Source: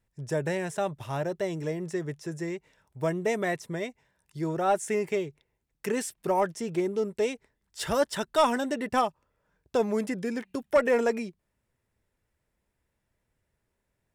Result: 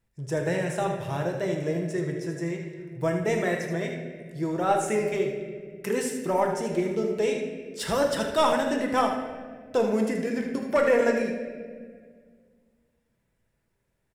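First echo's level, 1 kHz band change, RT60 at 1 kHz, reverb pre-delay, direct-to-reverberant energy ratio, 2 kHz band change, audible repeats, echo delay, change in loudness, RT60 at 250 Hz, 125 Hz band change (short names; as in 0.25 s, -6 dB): -10.0 dB, +1.5 dB, 1.5 s, 6 ms, 1.0 dB, +3.0 dB, 1, 78 ms, +2.5 dB, 2.5 s, +4.0 dB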